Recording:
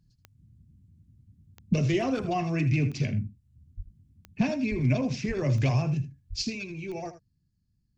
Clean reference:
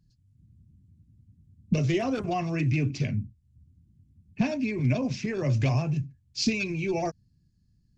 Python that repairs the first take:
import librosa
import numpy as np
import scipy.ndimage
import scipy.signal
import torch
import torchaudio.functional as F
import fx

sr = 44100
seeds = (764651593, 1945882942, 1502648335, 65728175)

y = fx.fix_declick_ar(x, sr, threshold=10.0)
y = fx.fix_deplosive(y, sr, at_s=(3.76, 4.7, 5.27, 6.29))
y = fx.fix_echo_inverse(y, sr, delay_ms=79, level_db=-13.0)
y = fx.gain(y, sr, db=fx.steps((0.0, 0.0), (6.42, 7.5)))